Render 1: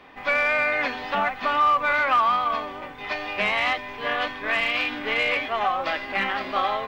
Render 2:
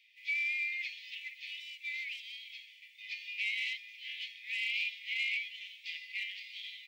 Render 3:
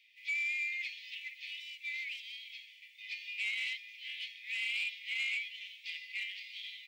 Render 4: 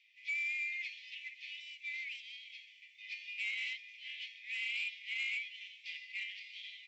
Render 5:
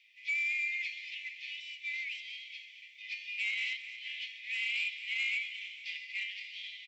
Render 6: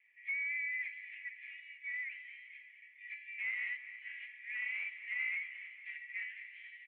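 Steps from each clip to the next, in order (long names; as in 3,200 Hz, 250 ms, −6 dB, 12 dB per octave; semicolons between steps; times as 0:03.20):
Butterworth high-pass 2,100 Hz 96 dB per octave; level −8 dB
soft clipping −26.5 dBFS, distortion −23 dB
Chebyshev low-pass with heavy ripple 7,700 Hz, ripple 3 dB; level −2 dB
repeating echo 225 ms, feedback 59%, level −13.5 dB; level +4 dB
single-sideband voice off tune −89 Hz 300–2,100 Hz; level +2 dB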